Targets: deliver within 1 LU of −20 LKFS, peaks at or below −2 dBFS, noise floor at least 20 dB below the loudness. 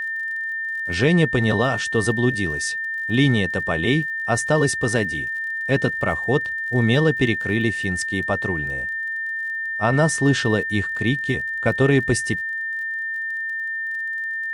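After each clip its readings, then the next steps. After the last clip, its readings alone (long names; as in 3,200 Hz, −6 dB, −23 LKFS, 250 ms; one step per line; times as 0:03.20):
crackle rate 35 per second; interfering tone 1,800 Hz; level of the tone −24 dBFS; integrated loudness −21.5 LKFS; sample peak −5.5 dBFS; target loudness −20.0 LKFS
→ click removal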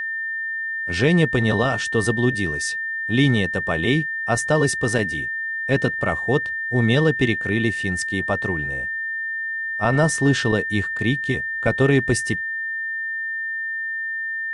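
crackle rate 0 per second; interfering tone 1,800 Hz; level of the tone −24 dBFS
→ notch filter 1,800 Hz, Q 30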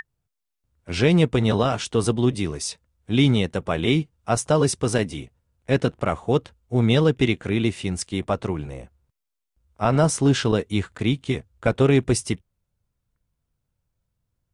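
interfering tone none found; integrated loudness −22.5 LKFS; sample peak −6.5 dBFS; target loudness −20.0 LKFS
→ level +2.5 dB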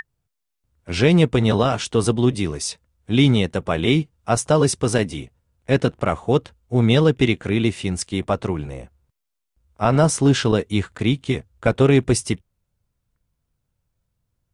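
integrated loudness −20.0 LKFS; sample peak −4.0 dBFS; background noise floor −79 dBFS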